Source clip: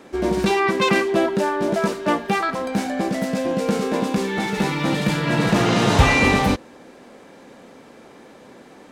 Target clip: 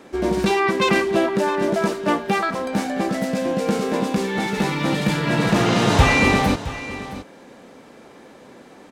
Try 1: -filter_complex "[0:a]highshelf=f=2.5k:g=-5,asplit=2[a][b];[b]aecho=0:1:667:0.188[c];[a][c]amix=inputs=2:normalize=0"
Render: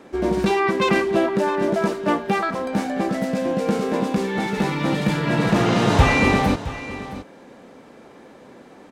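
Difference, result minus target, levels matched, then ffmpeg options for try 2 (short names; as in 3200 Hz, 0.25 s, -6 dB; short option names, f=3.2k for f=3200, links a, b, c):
4000 Hz band -2.5 dB
-filter_complex "[0:a]asplit=2[a][b];[b]aecho=0:1:667:0.188[c];[a][c]amix=inputs=2:normalize=0"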